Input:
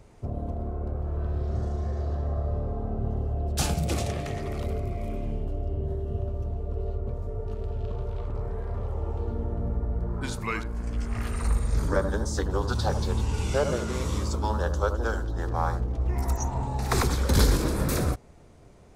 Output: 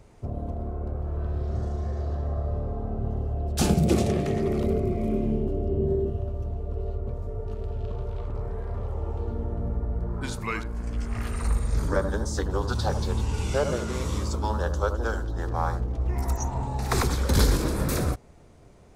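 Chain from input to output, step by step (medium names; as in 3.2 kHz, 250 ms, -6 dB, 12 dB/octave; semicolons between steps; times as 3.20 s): 3.61–6.10 s: small resonant body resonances 210/360 Hz, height 12 dB, ringing for 30 ms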